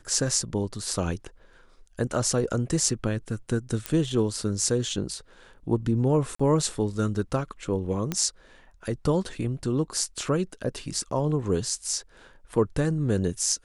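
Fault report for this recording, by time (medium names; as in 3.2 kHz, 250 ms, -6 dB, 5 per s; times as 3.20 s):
3.86 s: pop -12 dBFS
6.35–6.39 s: dropout 45 ms
8.12 s: pop -13 dBFS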